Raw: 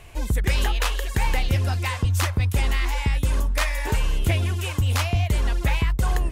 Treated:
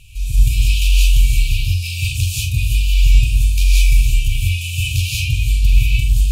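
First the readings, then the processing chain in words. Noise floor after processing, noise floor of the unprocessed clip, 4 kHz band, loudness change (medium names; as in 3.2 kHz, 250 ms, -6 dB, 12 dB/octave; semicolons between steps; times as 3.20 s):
-24 dBFS, -34 dBFS, +7.5 dB, +7.0 dB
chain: FFT band-reject 150–2300 Hz; compression, threshold -21 dBFS, peak gain reduction 5 dB; flutter echo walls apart 7.8 m, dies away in 0.31 s; gated-style reverb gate 220 ms rising, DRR -6 dB; trim +2.5 dB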